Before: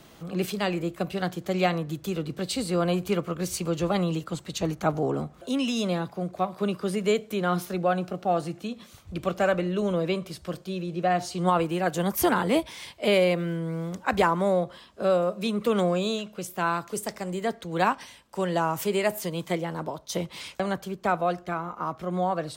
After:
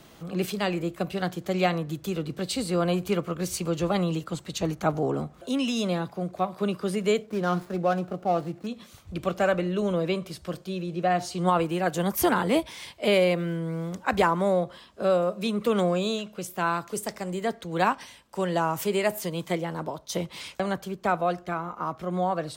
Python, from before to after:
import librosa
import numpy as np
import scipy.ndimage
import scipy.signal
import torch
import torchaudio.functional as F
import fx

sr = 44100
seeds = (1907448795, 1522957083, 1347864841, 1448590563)

y = fx.median_filter(x, sr, points=15, at=(7.22, 8.67))